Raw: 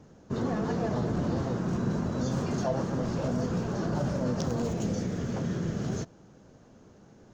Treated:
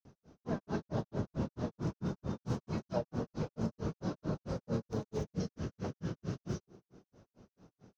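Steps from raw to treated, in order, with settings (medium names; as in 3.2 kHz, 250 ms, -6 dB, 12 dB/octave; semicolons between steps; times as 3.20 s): tape echo 64 ms, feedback 74%, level -7 dB, low-pass 1.1 kHz; speed mistake 48 kHz file played as 44.1 kHz; granulator 161 ms, grains 4.5 per s, pitch spread up and down by 0 st; trim -3.5 dB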